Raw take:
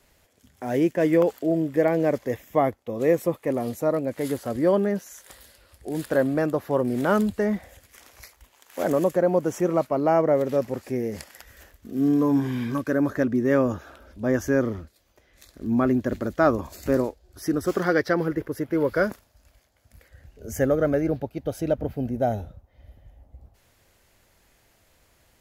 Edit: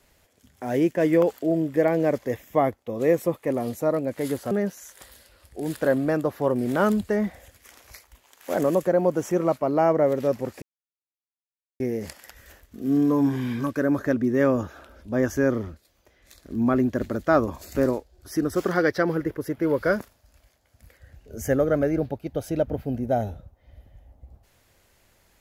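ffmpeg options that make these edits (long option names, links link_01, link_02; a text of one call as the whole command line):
ffmpeg -i in.wav -filter_complex "[0:a]asplit=3[link_01][link_02][link_03];[link_01]atrim=end=4.512[link_04];[link_02]atrim=start=4.798:end=10.91,asetpts=PTS-STARTPTS,afade=type=out:start_time=6.108:duration=0.004:curve=hsin,apad=pad_dur=1.18[link_05];[link_03]atrim=start=10.91,asetpts=PTS-STARTPTS,afade=type=in:duration=0.004:curve=hsin[link_06];[link_05][link_06]concat=n=2:v=0:a=1[link_07];[link_04][link_07]acrossfade=duration=0.004:curve1=hsin:curve2=hsin" out.wav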